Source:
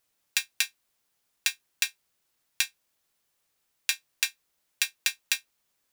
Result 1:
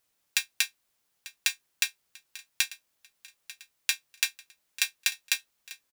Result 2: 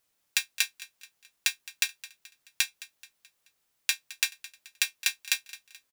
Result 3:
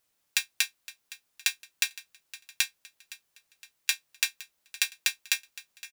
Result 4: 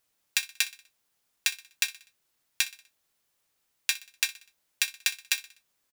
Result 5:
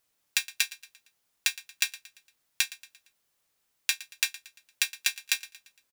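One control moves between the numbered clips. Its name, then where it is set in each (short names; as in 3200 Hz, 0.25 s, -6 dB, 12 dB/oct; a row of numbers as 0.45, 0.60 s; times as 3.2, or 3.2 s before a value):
feedback echo, time: 893, 215, 514, 62, 115 ms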